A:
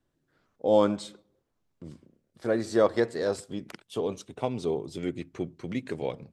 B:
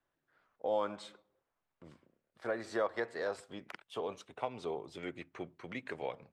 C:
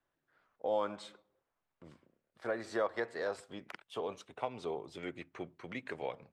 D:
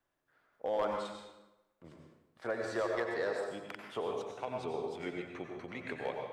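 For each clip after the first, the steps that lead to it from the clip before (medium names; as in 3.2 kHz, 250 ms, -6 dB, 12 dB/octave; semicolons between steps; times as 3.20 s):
three-band isolator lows -15 dB, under 600 Hz, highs -13 dB, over 2.9 kHz; compression 2:1, threshold -35 dBFS, peak gain reduction 7.5 dB; trim +1 dB
no audible change
tremolo saw down 3.8 Hz, depth 45%; hard clipper -28.5 dBFS, distortion -21 dB; plate-style reverb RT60 0.97 s, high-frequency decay 0.75×, pre-delay 80 ms, DRR 1.5 dB; trim +2 dB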